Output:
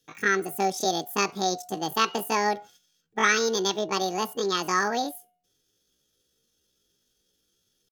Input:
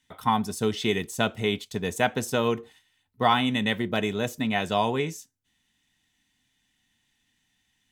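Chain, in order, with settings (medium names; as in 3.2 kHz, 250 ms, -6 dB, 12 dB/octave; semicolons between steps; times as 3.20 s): de-hum 404.2 Hz, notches 4; pitch shift +10 st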